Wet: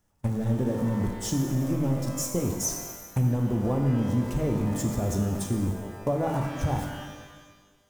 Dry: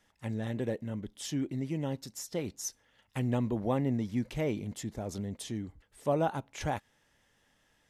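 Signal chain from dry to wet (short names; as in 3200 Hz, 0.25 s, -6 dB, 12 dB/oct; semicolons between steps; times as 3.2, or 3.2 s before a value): zero-crossing step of -37.5 dBFS; band shelf 2800 Hz -8.5 dB; gate -38 dBFS, range -38 dB; low shelf 190 Hz +9.5 dB; compressor, threshold -31 dBFS, peak gain reduction 10.5 dB; shimmer reverb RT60 1.4 s, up +12 st, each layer -8 dB, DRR 3 dB; gain +6.5 dB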